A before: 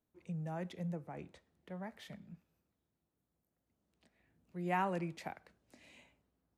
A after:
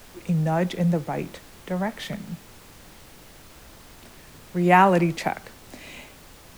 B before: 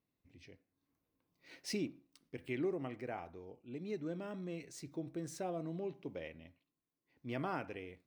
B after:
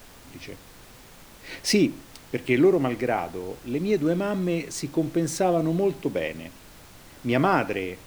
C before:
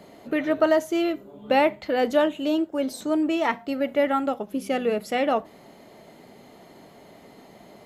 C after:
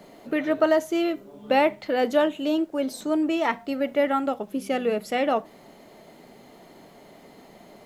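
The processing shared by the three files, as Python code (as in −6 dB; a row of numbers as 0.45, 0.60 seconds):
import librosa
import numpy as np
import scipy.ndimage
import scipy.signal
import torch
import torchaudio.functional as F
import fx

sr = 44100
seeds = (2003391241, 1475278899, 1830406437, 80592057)

y = scipy.signal.sosfilt(scipy.signal.butter(2, 110.0, 'highpass', fs=sr, output='sos'), x)
y = fx.dmg_noise_colour(y, sr, seeds[0], colour='pink', level_db=-66.0)
y = y * 10.0 ** (-26 / 20.0) / np.sqrt(np.mean(np.square(y)))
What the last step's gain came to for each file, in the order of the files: +18.5, +18.0, −0.5 decibels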